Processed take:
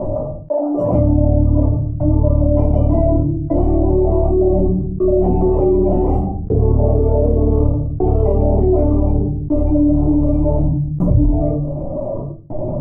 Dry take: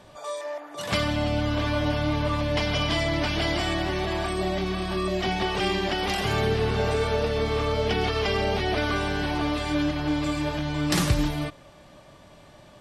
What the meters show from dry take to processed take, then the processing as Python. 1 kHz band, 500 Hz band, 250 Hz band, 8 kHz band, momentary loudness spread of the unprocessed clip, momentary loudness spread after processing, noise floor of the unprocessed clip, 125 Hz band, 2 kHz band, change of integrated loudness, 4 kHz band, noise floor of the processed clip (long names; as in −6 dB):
+1.5 dB, +10.5 dB, +11.5 dB, below −30 dB, 4 LU, 7 LU, −51 dBFS, +13.5 dB, below −25 dB, +9.5 dB, below −35 dB, −24 dBFS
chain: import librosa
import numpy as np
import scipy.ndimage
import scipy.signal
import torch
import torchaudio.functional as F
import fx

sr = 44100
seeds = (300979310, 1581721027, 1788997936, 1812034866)

y = fx.dereverb_blind(x, sr, rt60_s=1.6)
y = scipy.signal.sosfilt(scipy.signal.cheby2(4, 40, 1500.0, 'lowpass', fs=sr, output='sos'), y)
y = fx.step_gate(y, sr, bpm=90, pattern='x..xxxxxx', floor_db=-60.0, edge_ms=4.5)
y = fx.room_shoebox(y, sr, seeds[0], volume_m3=150.0, walls='furnished', distance_m=3.0)
y = fx.env_flatten(y, sr, amount_pct=70)